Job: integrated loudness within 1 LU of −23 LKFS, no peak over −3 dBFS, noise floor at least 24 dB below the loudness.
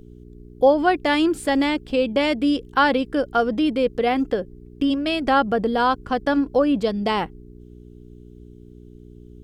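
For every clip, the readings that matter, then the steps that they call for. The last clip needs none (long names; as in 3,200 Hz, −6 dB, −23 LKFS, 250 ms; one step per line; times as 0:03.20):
mains hum 60 Hz; hum harmonics up to 420 Hz; level of the hum −42 dBFS; integrated loudness −21.0 LKFS; sample peak −5.5 dBFS; target loudness −23.0 LKFS
→ hum removal 60 Hz, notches 7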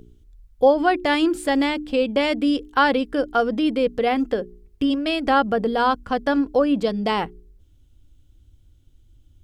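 mains hum none found; integrated loudness −21.0 LKFS; sample peak −6.0 dBFS; target loudness −23.0 LKFS
→ level −2 dB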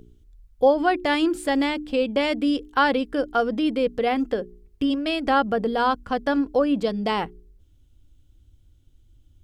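integrated loudness −23.0 LKFS; sample peak −8.0 dBFS; background noise floor −57 dBFS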